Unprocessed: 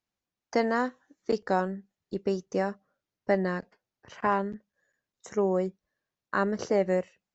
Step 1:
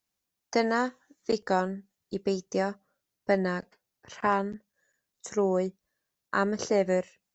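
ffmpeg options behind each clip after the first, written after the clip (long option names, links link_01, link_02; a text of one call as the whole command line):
ffmpeg -i in.wav -af "highshelf=frequency=4900:gain=11" out.wav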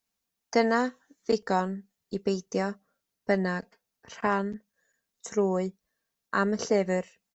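ffmpeg -i in.wav -af "aecho=1:1:4.4:0.33" out.wav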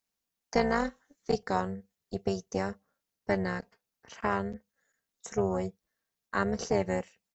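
ffmpeg -i in.wav -af "tremolo=f=290:d=0.75" out.wav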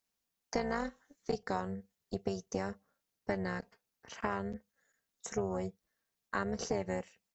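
ffmpeg -i in.wav -af "acompressor=threshold=-32dB:ratio=3" out.wav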